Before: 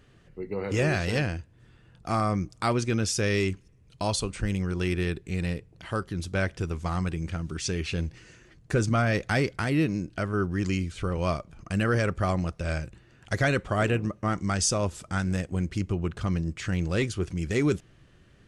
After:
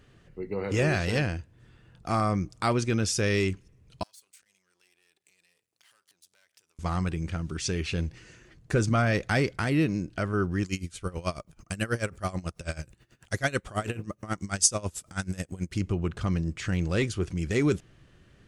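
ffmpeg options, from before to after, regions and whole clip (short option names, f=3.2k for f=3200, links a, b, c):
-filter_complex "[0:a]asettb=1/sr,asplit=3[a][b][c];[a]atrim=end=4.034[d];[b]atrim=start=4.03:end=6.79,asetpts=PTS-STARTPTS,afade=t=in:d=0.004:c=qsin,afade=t=out:st=2.756:d=0.004:c=qsin,aeval=exprs='if(lt(val(0),0),0.251*val(0),val(0))':c=same,acompressor=threshold=-44dB:ratio=16:attack=3.2:release=140:knee=1:detection=peak,aderivative[e];[c]atrim=start=6.786[f];[d][e]acrossfade=d=0.004:c1=hsin:c2=qsin[g];[g][f]acrossfade=d=0.004:c1=qsin:c2=hsin,asettb=1/sr,asplit=3[h][i][j];[h]atrim=end=10.634[k];[i]atrim=start=10.63:end=15.74,asetpts=PTS-STARTPTS,afade=t=in:d=0.004:c=qsin,afade=t=out:st=5.106:d=0.004:c=qsin,aemphasis=mode=production:type=50fm,aeval=exprs='val(0)*pow(10,-20*(0.5-0.5*cos(2*PI*9.2*n/s))/20)':c=same[l];[j]atrim=start=15.736[m];[k][l]acrossfade=d=0.004:c1=hsin:c2=qsin[n];[n][m]acrossfade=d=0.004:c1=qsin:c2=hsin"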